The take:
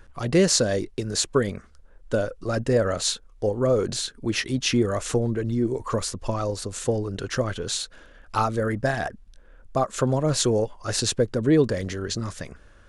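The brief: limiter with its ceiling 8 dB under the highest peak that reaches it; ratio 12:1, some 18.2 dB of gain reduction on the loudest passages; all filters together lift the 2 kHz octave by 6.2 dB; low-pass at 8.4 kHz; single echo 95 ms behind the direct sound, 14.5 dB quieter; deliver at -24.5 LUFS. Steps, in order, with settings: low-pass 8.4 kHz; peaking EQ 2 kHz +8 dB; compression 12:1, threshold -33 dBFS; peak limiter -28 dBFS; delay 95 ms -14.5 dB; trim +14 dB

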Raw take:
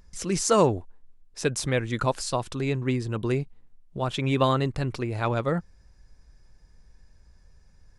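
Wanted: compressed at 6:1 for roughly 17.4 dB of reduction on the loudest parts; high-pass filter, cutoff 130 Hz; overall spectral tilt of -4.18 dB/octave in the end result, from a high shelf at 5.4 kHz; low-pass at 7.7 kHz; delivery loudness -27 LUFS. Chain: high-pass 130 Hz; low-pass 7.7 kHz; treble shelf 5.4 kHz +6 dB; compression 6:1, threshold -35 dBFS; trim +12 dB

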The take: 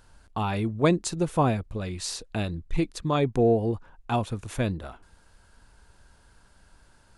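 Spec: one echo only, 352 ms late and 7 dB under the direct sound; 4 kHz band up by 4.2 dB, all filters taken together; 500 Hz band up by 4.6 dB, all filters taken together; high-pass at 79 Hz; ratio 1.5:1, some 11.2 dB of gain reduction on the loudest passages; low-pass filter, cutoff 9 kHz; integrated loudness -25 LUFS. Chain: high-pass 79 Hz; low-pass 9 kHz; peaking EQ 500 Hz +5.5 dB; peaking EQ 4 kHz +5 dB; compression 1.5:1, threshold -45 dBFS; delay 352 ms -7 dB; trim +8.5 dB

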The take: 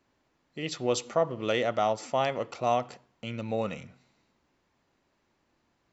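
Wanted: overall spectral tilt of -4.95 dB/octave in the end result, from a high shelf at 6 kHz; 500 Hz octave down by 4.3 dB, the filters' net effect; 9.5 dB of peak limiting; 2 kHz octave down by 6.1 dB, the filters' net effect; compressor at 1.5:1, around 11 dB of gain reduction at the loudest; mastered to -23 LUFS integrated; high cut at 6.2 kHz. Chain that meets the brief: low-pass 6.2 kHz; peaking EQ 500 Hz -5 dB; peaking EQ 2 kHz -8 dB; treble shelf 6 kHz +3 dB; compression 1.5:1, threshold -56 dBFS; trim +25.5 dB; peak limiter -10.5 dBFS

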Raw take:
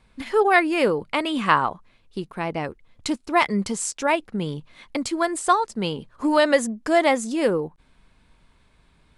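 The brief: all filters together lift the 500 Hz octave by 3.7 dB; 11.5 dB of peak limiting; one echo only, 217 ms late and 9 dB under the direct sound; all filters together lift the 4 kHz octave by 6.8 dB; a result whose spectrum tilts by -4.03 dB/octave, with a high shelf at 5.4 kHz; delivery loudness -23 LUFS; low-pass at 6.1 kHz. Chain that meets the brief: low-pass 6.1 kHz; peaking EQ 500 Hz +4.5 dB; peaking EQ 4 kHz +8 dB; treble shelf 5.4 kHz +4 dB; peak limiter -10.5 dBFS; delay 217 ms -9 dB

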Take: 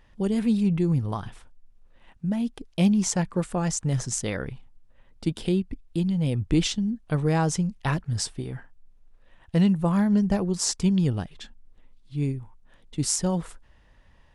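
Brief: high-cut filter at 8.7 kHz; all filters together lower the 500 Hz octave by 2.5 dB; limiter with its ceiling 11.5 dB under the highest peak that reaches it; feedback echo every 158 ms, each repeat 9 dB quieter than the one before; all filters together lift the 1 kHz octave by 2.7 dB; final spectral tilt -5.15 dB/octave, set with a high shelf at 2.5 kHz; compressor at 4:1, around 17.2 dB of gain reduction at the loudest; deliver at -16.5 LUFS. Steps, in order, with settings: low-pass 8.7 kHz; peaking EQ 500 Hz -4.5 dB; peaking EQ 1 kHz +4.5 dB; treble shelf 2.5 kHz +3 dB; compression 4:1, threshold -39 dBFS; peak limiter -32.5 dBFS; feedback delay 158 ms, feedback 35%, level -9 dB; trim +25 dB

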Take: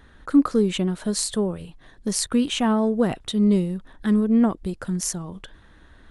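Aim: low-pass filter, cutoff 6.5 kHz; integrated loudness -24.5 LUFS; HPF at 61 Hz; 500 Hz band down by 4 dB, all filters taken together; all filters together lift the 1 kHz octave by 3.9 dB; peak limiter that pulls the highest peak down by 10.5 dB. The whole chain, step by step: high-pass 61 Hz; low-pass 6.5 kHz; peaking EQ 500 Hz -6.5 dB; peaking EQ 1 kHz +7 dB; trim +3.5 dB; peak limiter -15.5 dBFS

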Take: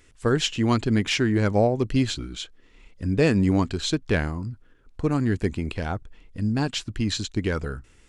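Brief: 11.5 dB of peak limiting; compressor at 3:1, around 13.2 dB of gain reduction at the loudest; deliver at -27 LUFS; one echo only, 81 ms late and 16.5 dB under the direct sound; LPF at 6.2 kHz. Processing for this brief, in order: low-pass 6.2 kHz; compression 3:1, threshold -35 dBFS; peak limiter -32.5 dBFS; delay 81 ms -16.5 dB; trim +14.5 dB

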